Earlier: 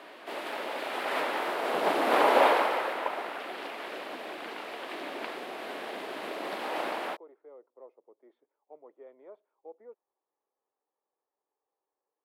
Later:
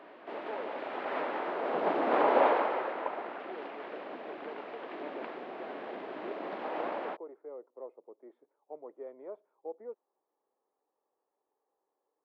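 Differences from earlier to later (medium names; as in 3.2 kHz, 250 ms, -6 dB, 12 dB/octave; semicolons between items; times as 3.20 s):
speech +8.0 dB; master: add tape spacing loss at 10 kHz 38 dB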